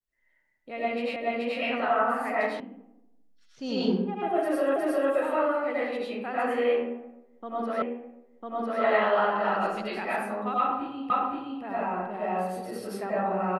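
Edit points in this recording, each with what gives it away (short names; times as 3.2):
1.16 repeat of the last 0.43 s
2.6 sound cut off
4.76 repeat of the last 0.36 s
7.82 repeat of the last 1 s
11.1 repeat of the last 0.52 s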